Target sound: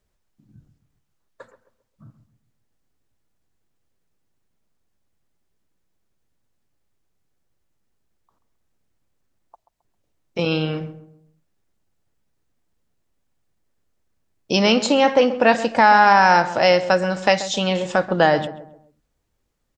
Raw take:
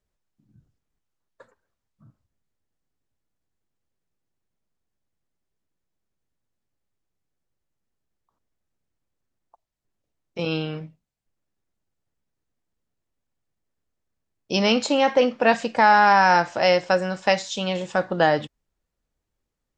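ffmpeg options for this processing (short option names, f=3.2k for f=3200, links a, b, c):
-filter_complex "[0:a]asplit=2[a][b];[b]acompressor=threshold=-28dB:ratio=6,volume=0.5dB[c];[a][c]amix=inputs=2:normalize=0,asplit=2[d][e];[e]adelay=133,lowpass=f=1.1k:p=1,volume=-12dB,asplit=2[f][g];[g]adelay=133,lowpass=f=1.1k:p=1,volume=0.41,asplit=2[h][i];[i]adelay=133,lowpass=f=1.1k:p=1,volume=0.41,asplit=2[j][k];[k]adelay=133,lowpass=f=1.1k:p=1,volume=0.41[l];[d][f][h][j][l]amix=inputs=5:normalize=0,volume=1dB"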